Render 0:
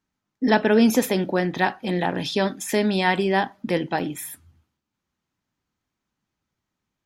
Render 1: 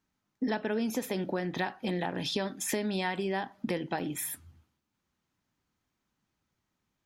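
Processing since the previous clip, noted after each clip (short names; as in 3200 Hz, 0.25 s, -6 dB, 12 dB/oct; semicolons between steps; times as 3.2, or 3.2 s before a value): compressor 6:1, threshold -29 dBFS, peak gain reduction 15.5 dB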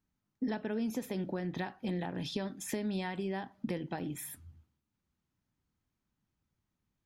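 low shelf 230 Hz +11 dB; gain -8 dB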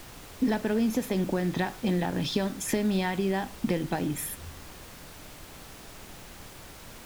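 added noise pink -54 dBFS; gain +8.5 dB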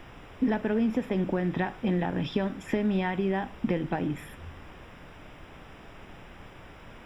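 polynomial smoothing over 25 samples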